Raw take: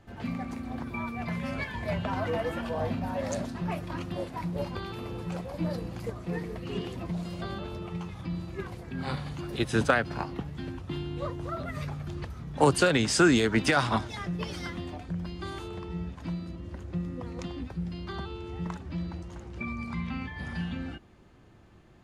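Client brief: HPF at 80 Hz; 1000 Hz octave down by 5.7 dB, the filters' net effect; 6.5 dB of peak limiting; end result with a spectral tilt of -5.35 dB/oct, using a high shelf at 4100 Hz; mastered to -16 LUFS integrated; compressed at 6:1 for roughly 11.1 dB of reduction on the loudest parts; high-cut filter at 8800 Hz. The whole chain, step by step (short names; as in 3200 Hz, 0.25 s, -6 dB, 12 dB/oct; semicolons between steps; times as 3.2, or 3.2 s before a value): HPF 80 Hz; LPF 8800 Hz; bell 1000 Hz -8.5 dB; high shelf 4100 Hz +5.5 dB; compressor 6:1, threshold -30 dBFS; gain +21.5 dB; limiter -4 dBFS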